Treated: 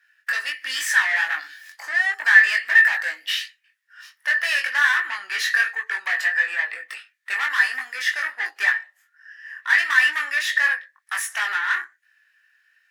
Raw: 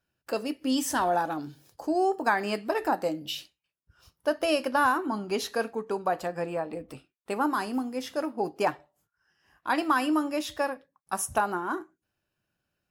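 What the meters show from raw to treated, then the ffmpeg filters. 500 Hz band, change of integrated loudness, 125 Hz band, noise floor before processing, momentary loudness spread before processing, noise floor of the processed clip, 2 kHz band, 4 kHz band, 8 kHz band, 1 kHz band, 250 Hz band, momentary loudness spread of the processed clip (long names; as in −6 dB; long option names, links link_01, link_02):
−17.5 dB, +9.0 dB, below −35 dB, −84 dBFS, 11 LU, −67 dBFS, +18.0 dB, +10.0 dB, +5.0 dB, −4.0 dB, below −30 dB, 14 LU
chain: -filter_complex "[0:a]asplit=2[link_01][link_02];[link_02]highpass=frequency=720:poles=1,volume=25dB,asoftclip=type=tanh:threshold=-11.5dB[link_03];[link_01][link_03]amix=inputs=2:normalize=0,lowpass=frequency=6900:poles=1,volume=-6dB,highpass=frequency=1800:width_type=q:width=15,flanger=delay=19.5:depth=2.2:speed=1.4,volume=-3dB"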